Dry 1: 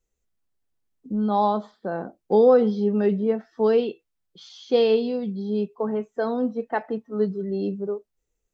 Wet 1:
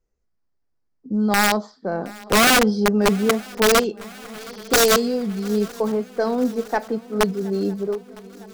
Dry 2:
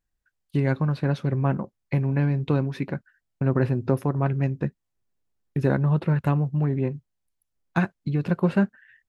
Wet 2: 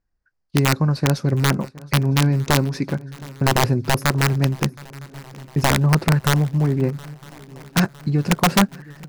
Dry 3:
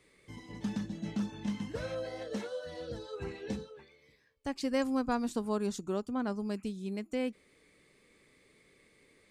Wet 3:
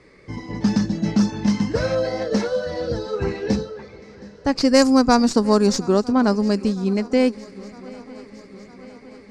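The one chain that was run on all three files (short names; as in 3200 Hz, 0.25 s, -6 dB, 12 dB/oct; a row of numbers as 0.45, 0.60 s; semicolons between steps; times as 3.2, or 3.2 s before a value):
tracing distortion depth 0.06 ms; low-pass opened by the level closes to 2200 Hz, open at -21.5 dBFS; resonant high shelf 4100 Hz +6.5 dB, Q 3; wrapped overs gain 13.5 dB; swung echo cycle 0.958 s, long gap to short 3:1, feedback 60%, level -22.5 dB; match loudness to -20 LUFS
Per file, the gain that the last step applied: +3.5, +5.0, +16.5 dB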